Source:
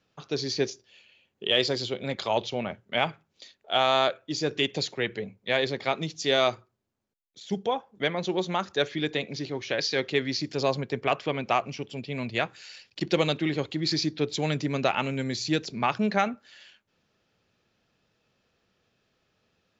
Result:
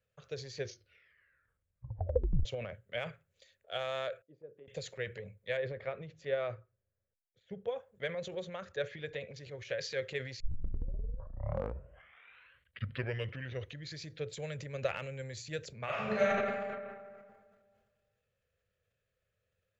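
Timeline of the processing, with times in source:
0:00.59: tape stop 1.86 s
0:04.22–0:04.68: four-pole ladder band-pass 340 Hz, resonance 20%
0:05.57–0:07.68: low-pass filter 2,000 Hz
0:08.42–0:09.36: high-frequency loss of the air 82 metres
0:10.40: tape start 3.61 s
0:15.84–0:16.32: thrown reverb, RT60 1.9 s, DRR −8.5 dB
whole clip: drawn EQ curve 100 Hz 0 dB, 300 Hz −24 dB, 530 Hz −1 dB, 830 Hz −20 dB, 1,700 Hz −6 dB, 3,000 Hz −12 dB, 5,400 Hz −17 dB, 8,000 Hz −3 dB; transient designer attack +4 dB, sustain +8 dB; level −5 dB

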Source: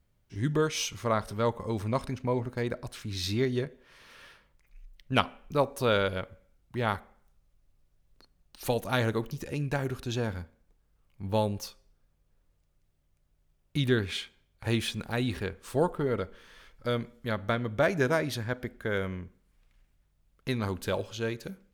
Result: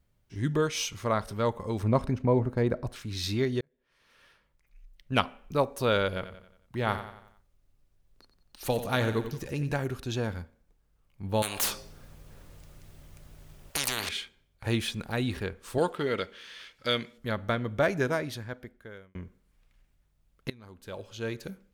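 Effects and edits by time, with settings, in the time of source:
0:01.83–0:02.96: tilt shelving filter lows +6 dB, about 1,500 Hz
0:03.61–0:05.25: fade in
0:06.07–0:09.72: repeating echo 90 ms, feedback 46%, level −11 dB
0:11.42–0:14.09: every bin compressed towards the loudest bin 10 to 1
0:15.78–0:17.18: meter weighting curve D
0:17.83–0:19.15: fade out
0:20.50–0:21.36: fade in quadratic, from −21.5 dB

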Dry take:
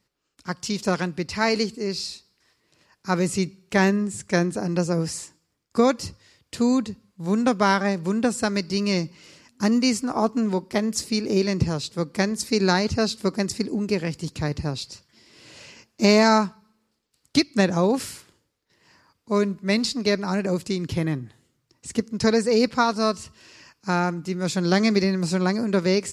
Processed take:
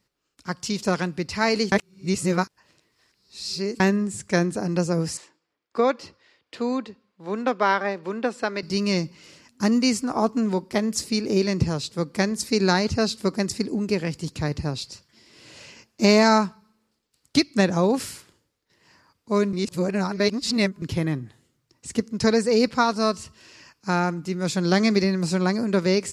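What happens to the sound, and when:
0:01.72–0:03.80: reverse
0:05.17–0:08.63: three-way crossover with the lows and the highs turned down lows −19 dB, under 280 Hz, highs −19 dB, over 4,200 Hz
0:19.53–0:20.82: reverse

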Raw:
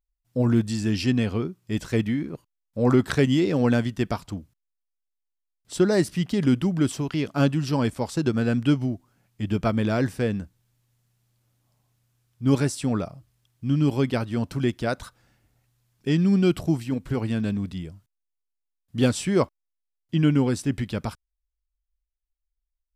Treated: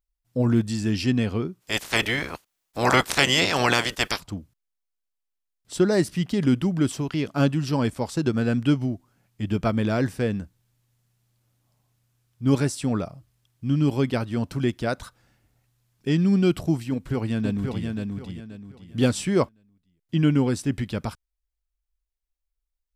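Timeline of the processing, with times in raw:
0:01.60–0:04.19: ceiling on every frequency bin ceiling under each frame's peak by 29 dB
0:16.91–0:17.87: delay throw 530 ms, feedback 30%, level −4 dB

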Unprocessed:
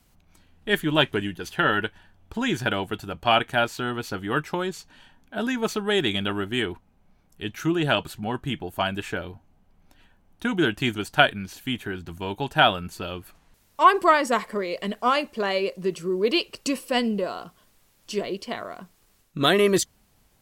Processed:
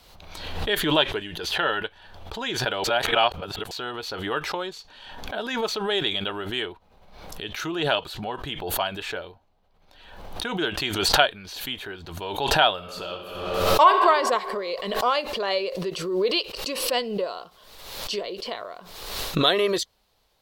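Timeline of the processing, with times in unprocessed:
0:02.84–0:03.71: reverse
0:12.74–0:13.98: thrown reverb, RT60 1.5 s, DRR 2.5 dB
whole clip: octave-band graphic EQ 125/250/500/1,000/4,000/8,000 Hz −5/−6/+8/+5/+12/−4 dB; background raised ahead of every attack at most 47 dB per second; level −7.5 dB

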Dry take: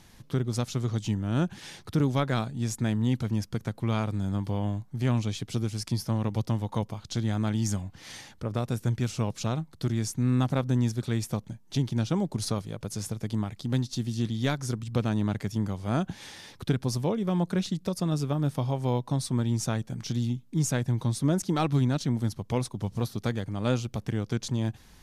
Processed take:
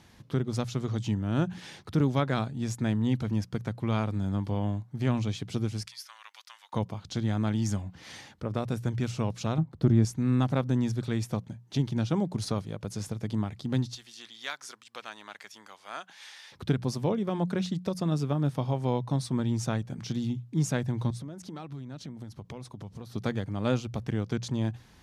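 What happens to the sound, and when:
0:05.87–0:06.73: high-pass filter 1,400 Hz 24 dB per octave
0:09.58–0:10.05: tilt shelving filter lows +7.5 dB, about 1,400 Hz
0:13.95–0:16.52: high-pass filter 1,200 Hz
0:21.10–0:23.14: downward compressor 12 to 1, threshold −36 dBFS
whole clip: high-pass filter 54 Hz; high-shelf EQ 6,500 Hz −9.5 dB; mains-hum notches 60/120/180 Hz

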